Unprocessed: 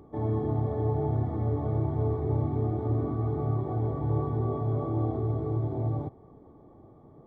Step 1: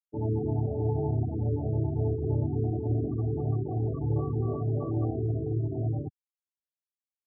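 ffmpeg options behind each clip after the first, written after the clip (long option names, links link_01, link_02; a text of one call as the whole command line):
ffmpeg -i in.wav -af "lowpass=frequency=1200:poles=1,afftfilt=real='re*gte(hypot(re,im),0.0447)':imag='im*gte(hypot(re,im),0.0447)':win_size=1024:overlap=0.75" out.wav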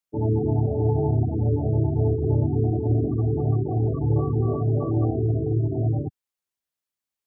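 ffmpeg -i in.wav -af "acontrast=63" out.wav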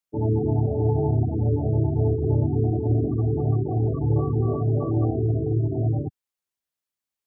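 ffmpeg -i in.wav -af anull out.wav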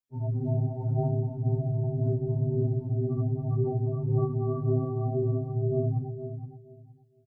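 ffmpeg -i in.wav -af "aphaser=in_gain=1:out_gain=1:delay=1.2:decay=0.42:speed=1.9:type=triangular,aecho=1:1:467|934|1401:0.316|0.0664|0.0139,afftfilt=real='re*2.45*eq(mod(b,6),0)':imag='im*2.45*eq(mod(b,6),0)':win_size=2048:overlap=0.75,volume=-4.5dB" out.wav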